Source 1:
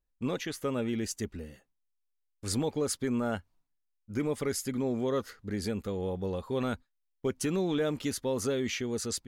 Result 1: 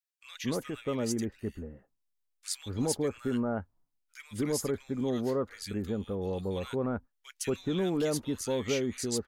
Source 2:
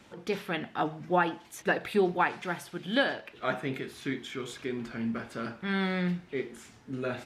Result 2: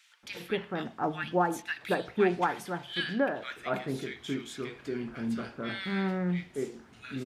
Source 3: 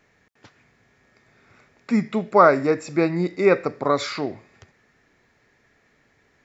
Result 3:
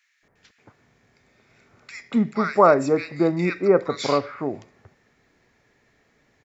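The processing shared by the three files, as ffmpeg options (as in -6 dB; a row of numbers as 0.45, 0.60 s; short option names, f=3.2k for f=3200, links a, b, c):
-filter_complex "[0:a]acrossover=split=1600[a][b];[a]adelay=230[c];[c][b]amix=inputs=2:normalize=0"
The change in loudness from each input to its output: 0.0, -0.5, -0.5 LU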